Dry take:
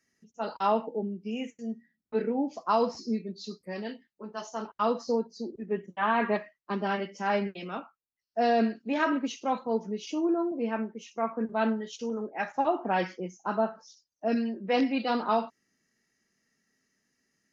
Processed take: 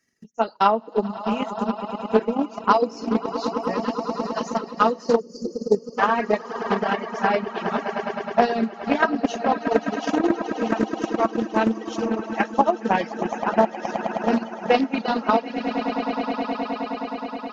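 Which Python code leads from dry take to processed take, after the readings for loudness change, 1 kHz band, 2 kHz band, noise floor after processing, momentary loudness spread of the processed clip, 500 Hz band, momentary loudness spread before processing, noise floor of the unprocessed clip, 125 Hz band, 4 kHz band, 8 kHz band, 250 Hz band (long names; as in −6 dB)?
+6.5 dB, +8.0 dB, +7.5 dB, −42 dBFS, 7 LU, +7.5 dB, 12 LU, −85 dBFS, +7.0 dB, +6.5 dB, can't be measured, +6.5 dB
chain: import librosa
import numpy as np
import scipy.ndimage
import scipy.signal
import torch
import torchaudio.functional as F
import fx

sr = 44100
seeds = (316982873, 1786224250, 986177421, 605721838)

p1 = fx.echo_swell(x, sr, ms=105, loudest=8, wet_db=-11.0)
p2 = fx.transient(p1, sr, attack_db=11, sustain_db=-2)
p3 = fx.spec_box(p2, sr, start_s=5.19, length_s=0.79, low_hz=580.0, high_hz=4300.0, gain_db=-23)
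p4 = fx.rider(p3, sr, range_db=4, speed_s=0.5)
p5 = p3 + F.gain(torch.from_numpy(p4), -1.0).numpy()
p6 = fx.dereverb_blind(p5, sr, rt60_s=1.4)
p7 = fx.doppler_dist(p6, sr, depth_ms=0.18)
y = F.gain(torch.from_numpy(p7), -1.5).numpy()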